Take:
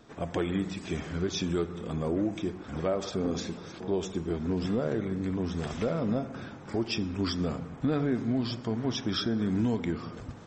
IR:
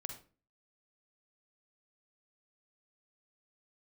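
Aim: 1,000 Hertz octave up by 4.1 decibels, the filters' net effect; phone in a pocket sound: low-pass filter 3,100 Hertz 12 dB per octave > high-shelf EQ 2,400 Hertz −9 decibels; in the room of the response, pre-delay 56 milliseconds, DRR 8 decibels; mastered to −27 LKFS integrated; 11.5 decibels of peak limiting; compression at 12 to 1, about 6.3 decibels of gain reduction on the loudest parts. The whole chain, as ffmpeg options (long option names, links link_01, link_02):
-filter_complex "[0:a]equalizer=frequency=1000:width_type=o:gain=7.5,acompressor=threshold=-29dB:ratio=12,alimiter=level_in=6.5dB:limit=-24dB:level=0:latency=1,volume=-6.5dB,asplit=2[link_01][link_02];[1:a]atrim=start_sample=2205,adelay=56[link_03];[link_02][link_03]afir=irnorm=-1:irlink=0,volume=-5.5dB[link_04];[link_01][link_04]amix=inputs=2:normalize=0,lowpass=3100,highshelf=frequency=2400:gain=-9,volume=12.5dB"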